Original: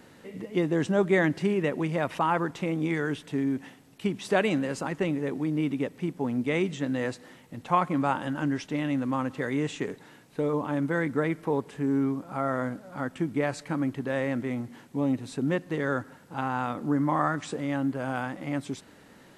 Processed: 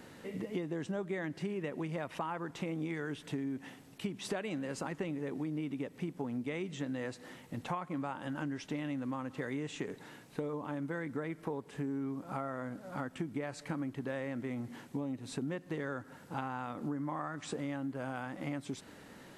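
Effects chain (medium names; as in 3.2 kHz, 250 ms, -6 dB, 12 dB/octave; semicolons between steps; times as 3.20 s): compression 10:1, threshold -34 dBFS, peak gain reduction 16.5 dB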